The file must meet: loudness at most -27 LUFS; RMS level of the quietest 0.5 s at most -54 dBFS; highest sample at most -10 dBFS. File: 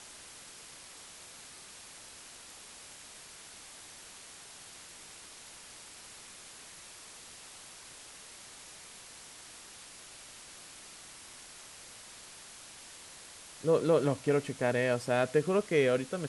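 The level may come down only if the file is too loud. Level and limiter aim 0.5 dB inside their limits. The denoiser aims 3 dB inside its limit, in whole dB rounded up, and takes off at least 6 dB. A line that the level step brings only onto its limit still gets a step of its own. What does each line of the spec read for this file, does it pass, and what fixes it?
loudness -29.0 LUFS: OK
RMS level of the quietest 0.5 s -51 dBFS: fail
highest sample -15.0 dBFS: OK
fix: denoiser 6 dB, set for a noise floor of -51 dBFS

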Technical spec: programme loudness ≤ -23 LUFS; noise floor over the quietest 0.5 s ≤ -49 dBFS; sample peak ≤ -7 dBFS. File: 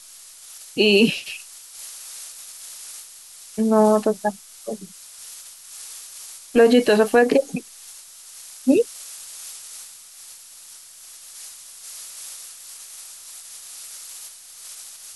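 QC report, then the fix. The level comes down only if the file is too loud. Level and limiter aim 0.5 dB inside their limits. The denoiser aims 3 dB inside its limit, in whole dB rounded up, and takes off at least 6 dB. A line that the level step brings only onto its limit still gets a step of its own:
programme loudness -19.5 LUFS: fail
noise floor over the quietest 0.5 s -44 dBFS: fail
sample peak -5.5 dBFS: fail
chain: denoiser 6 dB, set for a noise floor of -44 dBFS; gain -4 dB

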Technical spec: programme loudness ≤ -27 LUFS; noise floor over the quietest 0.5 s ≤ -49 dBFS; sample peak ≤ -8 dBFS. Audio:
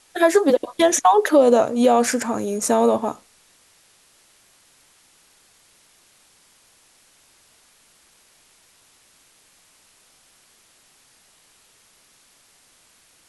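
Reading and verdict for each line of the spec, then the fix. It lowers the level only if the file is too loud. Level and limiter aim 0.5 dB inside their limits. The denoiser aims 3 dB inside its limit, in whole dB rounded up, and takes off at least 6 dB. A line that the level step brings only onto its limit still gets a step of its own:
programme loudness -18.0 LUFS: fail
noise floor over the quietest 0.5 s -57 dBFS: OK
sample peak -5.0 dBFS: fail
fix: gain -9.5 dB

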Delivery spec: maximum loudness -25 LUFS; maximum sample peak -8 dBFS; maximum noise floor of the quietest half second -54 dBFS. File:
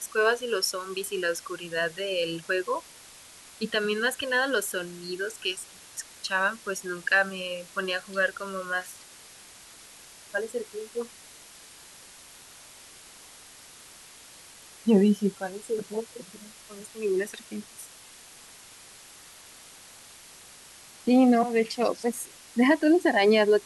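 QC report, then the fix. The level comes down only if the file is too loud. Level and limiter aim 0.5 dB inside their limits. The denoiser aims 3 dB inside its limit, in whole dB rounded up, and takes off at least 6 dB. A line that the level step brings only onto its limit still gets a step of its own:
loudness -27.0 LUFS: OK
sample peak -10.0 dBFS: OK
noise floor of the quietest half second -50 dBFS: fail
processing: denoiser 7 dB, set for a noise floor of -50 dBFS

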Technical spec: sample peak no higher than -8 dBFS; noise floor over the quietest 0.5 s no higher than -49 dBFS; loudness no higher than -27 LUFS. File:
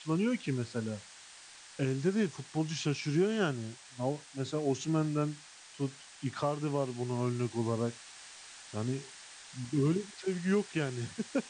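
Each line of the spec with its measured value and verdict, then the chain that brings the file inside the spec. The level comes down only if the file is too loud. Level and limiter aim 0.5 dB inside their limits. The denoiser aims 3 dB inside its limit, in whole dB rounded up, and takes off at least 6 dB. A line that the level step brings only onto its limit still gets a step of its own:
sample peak -17.0 dBFS: OK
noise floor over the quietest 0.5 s -53 dBFS: OK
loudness -34.0 LUFS: OK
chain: none

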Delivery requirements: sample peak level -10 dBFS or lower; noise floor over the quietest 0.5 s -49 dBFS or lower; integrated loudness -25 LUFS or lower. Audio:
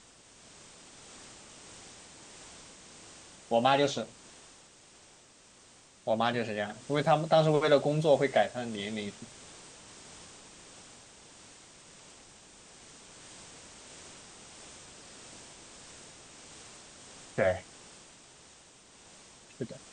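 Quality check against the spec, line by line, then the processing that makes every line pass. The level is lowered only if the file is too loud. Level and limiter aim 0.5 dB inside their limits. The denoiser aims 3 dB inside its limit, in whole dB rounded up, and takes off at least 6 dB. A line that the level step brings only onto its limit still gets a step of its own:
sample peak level -11.5 dBFS: OK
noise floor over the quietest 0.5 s -58 dBFS: OK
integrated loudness -29.0 LUFS: OK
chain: none

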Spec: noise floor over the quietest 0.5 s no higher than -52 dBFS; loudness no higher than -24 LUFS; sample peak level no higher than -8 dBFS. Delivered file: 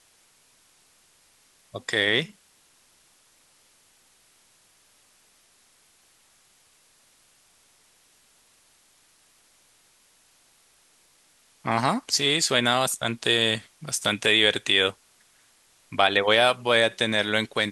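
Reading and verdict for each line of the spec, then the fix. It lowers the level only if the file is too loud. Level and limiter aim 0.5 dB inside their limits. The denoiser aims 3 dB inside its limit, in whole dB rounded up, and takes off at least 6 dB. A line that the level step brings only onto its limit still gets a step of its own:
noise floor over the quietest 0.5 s -61 dBFS: OK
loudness -22.5 LUFS: fail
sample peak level -5.5 dBFS: fail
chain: gain -2 dB; limiter -8.5 dBFS

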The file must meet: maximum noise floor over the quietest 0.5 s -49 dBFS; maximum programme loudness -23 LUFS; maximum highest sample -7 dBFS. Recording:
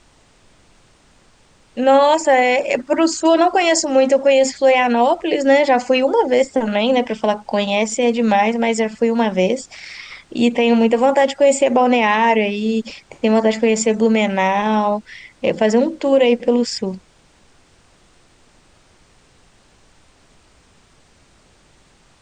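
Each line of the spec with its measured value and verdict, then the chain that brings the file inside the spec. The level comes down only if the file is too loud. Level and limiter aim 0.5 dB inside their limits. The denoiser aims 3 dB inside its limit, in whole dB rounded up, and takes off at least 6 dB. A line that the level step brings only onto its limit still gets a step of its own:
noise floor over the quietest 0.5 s -53 dBFS: OK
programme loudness -16.0 LUFS: fail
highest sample -4.5 dBFS: fail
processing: gain -7.5 dB

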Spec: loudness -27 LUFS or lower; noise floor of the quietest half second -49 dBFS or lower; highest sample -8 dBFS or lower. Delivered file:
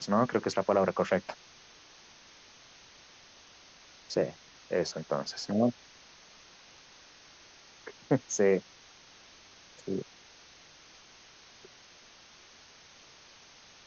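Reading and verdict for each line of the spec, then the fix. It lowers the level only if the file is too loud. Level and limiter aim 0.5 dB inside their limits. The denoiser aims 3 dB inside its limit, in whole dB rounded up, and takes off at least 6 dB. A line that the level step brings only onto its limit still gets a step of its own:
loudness -30.5 LUFS: OK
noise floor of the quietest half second -56 dBFS: OK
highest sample -12.0 dBFS: OK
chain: none

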